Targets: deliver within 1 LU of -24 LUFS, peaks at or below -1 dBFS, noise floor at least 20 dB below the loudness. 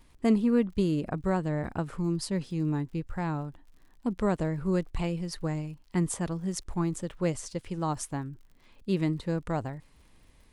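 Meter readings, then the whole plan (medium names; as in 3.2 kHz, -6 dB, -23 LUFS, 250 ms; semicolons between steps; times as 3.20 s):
tick rate 52 per s; loudness -30.5 LUFS; peak level -13.0 dBFS; loudness target -24.0 LUFS
-> de-click; trim +6.5 dB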